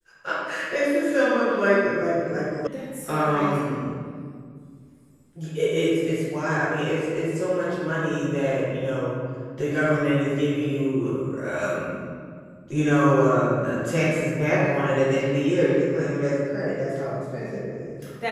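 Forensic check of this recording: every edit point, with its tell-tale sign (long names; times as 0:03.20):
0:02.67: cut off before it has died away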